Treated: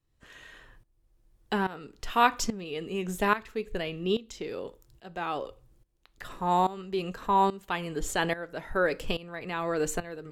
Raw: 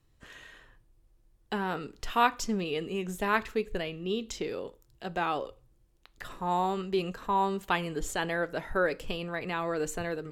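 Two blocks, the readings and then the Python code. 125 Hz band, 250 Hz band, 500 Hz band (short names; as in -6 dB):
+1.0 dB, +1.0 dB, +1.0 dB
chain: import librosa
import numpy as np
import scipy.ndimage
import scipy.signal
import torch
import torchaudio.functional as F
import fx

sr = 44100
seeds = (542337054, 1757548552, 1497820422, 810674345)

y = fx.tremolo_shape(x, sr, shape='saw_up', hz=1.2, depth_pct=85)
y = y * librosa.db_to_amplitude(5.0)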